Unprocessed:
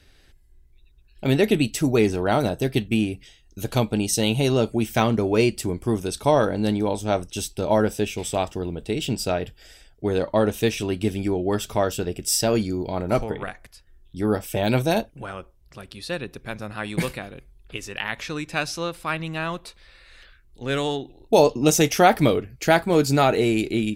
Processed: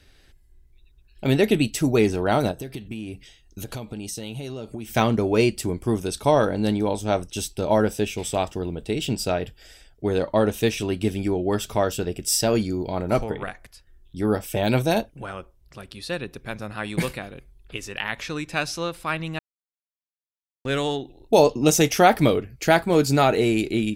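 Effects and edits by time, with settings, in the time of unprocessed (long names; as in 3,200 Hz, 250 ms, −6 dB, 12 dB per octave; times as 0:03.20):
0:02.51–0:04.90: downward compressor 10 to 1, threshold −29 dBFS
0:19.39–0:20.65: silence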